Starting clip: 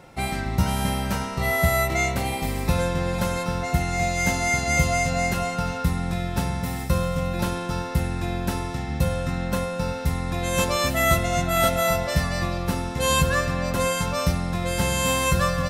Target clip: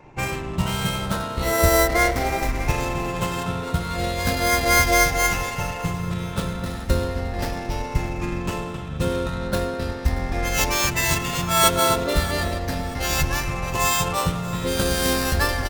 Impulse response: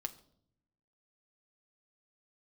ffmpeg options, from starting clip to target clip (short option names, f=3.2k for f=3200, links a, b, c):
-filter_complex "[0:a]afftfilt=real='re*pow(10,19/40*sin(2*PI*(0.71*log(max(b,1)*sr/1024/100)/log(2)-(0.37)*(pts-256)/sr)))':imag='im*pow(10,19/40*sin(2*PI*(0.71*log(max(b,1)*sr/1024/100)/log(2)-(0.37)*(pts-256)/sr)))':win_size=1024:overlap=0.75,adynamicequalizer=threshold=0.0224:dfrequency=190:dqfactor=0.78:tfrequency=190:tqfactor=0.78:attack=5:release=100:ratio=0.375:range=1.5:mode=cutabove:tftype=bell,asplit=4[a][b][c][d];[b]asetrate=22050,aresample=44100,atempo=2,volume=-6dB[e];[c]asetrate=29433,aresample=44100,atempo=1.49831,volume=-6dB[f];[d]asetrate=35002,aresample=44100,atempo=1.25992,volume=-11dB[g];[a][e][f][g]amix=inputs=4:normalize=0,adynamicsmooth=sensitivity=2.5:basefreq=2.1k,aemphasis=mode=production:type=50fm,asplit=2[h][i];[i]aecho=0:1:631|1262|1893:0.126|0.0453|0.0163[j];[h][j]amix=inputs=2:normalize=0,volume=-4dB"